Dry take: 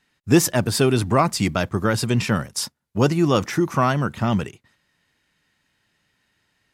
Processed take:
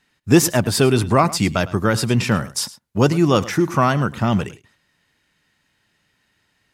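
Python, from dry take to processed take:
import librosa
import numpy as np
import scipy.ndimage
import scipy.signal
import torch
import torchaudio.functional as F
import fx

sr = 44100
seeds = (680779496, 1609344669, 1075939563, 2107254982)

y = x + 10.0 ** (-18.0 / 20.0) * np.pad(x, (int(106 * sr / 1000.0), 0))[:len(x)]
y = y * 10.0 ** (2.5 / 20.0)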